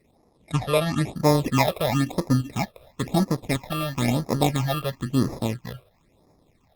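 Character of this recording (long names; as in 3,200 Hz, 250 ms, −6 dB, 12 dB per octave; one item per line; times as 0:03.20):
aliases and images of a low sample rate 1,500 Hz, jitter 0%
phaser sweep stages 8, 0.99 Hz, lowest notch 250–3,000 Hz
Opus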